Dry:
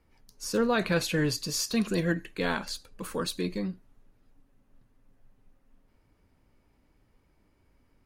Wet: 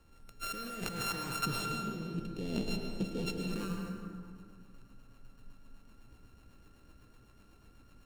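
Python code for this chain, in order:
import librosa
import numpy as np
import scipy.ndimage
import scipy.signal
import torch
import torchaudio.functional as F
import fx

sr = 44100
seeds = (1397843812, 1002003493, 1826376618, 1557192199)

y = np.r_[np.sort(x[:len(x) // 32 * 32].reshape(-1, 32), axis=1).ravel(), x[len(x) // 32 * 32:]]
y = fx.curve_eq(y, sr, hz=(420.0, 1300.0, 3300.0, 11000.0), db=(0, -21, -5, -17), at=(1.44, 3.5), fade=0.02)
y = fx.over_compress(y, sr, threshold_db=-37.0, ratio=-1.0)
y = fx.rotary_switch(y, sr, hz=0.6, then_hz=8.0, switch_at_s=2.81)
y = fx.rev_plate(y, sr, seeds[0], rt60_s=2.3, hf_ratio=0.45, predelay_ms=95, drr_db=1.5)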